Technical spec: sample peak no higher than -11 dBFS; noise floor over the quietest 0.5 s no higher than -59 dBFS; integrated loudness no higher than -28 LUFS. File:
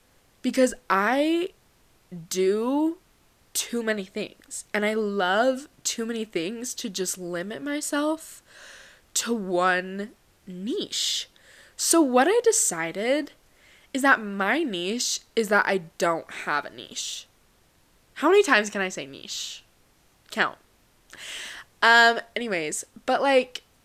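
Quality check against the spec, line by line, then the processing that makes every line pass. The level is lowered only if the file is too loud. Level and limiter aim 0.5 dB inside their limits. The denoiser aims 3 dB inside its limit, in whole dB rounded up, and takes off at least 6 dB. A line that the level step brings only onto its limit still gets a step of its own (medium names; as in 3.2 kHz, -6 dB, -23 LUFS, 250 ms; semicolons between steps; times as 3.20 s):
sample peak -4.5 dBFS: fail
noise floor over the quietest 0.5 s -61 dBFS: pass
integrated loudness -24.5 LUFS: fail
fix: trim -4 dB; peak limiter -11.5 dBFS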